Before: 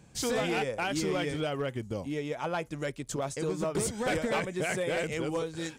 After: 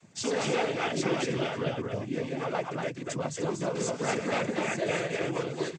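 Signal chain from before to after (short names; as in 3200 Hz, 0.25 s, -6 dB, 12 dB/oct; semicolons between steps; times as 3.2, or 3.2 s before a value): echo 0.237 s -3.5 dB; noise vocoder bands 16; Vorbis 64 kbps 22050 Hz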